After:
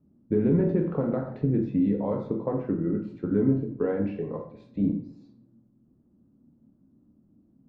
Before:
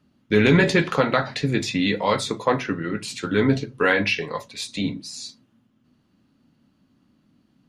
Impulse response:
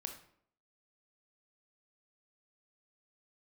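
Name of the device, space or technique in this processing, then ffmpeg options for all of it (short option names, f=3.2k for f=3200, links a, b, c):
television next door: -filter_complex "[0:a]acompressor=threshold=-20dB:ratio=3,lowpass=450[a];[1:a]atrim=start_sample=2205[b];[a][b]afir=irnorm=-1:irlink=0,volume=4dB"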